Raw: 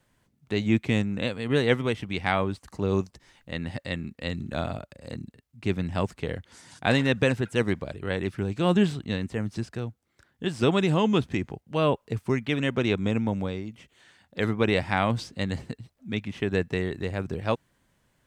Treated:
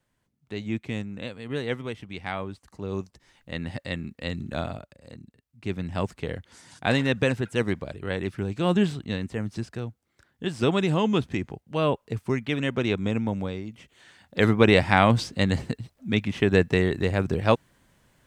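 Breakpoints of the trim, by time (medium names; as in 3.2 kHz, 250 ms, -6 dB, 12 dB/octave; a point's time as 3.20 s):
2.85 s -7 dB
3.56 s 0 dB
4.58 s 0 dB
5.17 s -8.5 dB
6.04 s -0.5 dB
13.60 s -0.5 dB
14.42 s +6 dB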